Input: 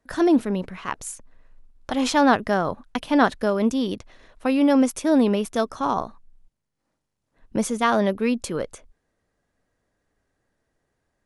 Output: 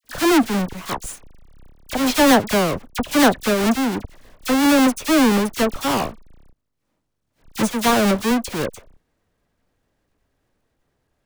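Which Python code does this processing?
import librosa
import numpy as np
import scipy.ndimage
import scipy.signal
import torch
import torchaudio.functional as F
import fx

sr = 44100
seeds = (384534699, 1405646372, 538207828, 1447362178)

y = fx.halfwave_hold(x, sr)
y = fx.dispersion(y, sr, late='lows', ms=43.0, hz=1900.0)
y = y * 10.0 ** (-1.0 / 20.0)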